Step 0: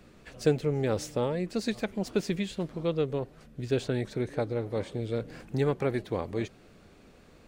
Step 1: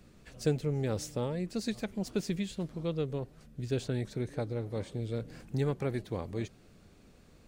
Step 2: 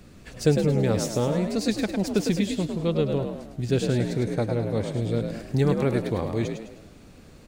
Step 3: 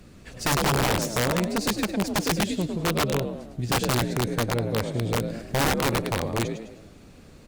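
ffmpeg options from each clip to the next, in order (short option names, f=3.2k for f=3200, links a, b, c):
-af "bass=f=250:g=6,treble=f=4k:g=6,volume=-6.5dB"
-filter_complex "[0:a]asplit=6[a][b][c][d][e][f];[b]adelay=104,afreqshift=52,volume=-6dB[g];[c]adelay=208,afreqshift=104,volume=-13.5dB[h];[d]adelay=312,afreqshift=156,volume=-21.1dB[i];[e]adelay=416,afreqshift=208,volume=-28.6dB[j];[f]adelay=520,afreqshift=260,volume=-36.1dB[k];[a][g][h][i][j][k]amix=inputs=6:normalize=0,volume=8.5dB"
-af "aeval=exprs='(mod(7.08*val(0)+1,2)-1)/7.08':c=same" -ar 48000 -c:a libopus -b:a 64k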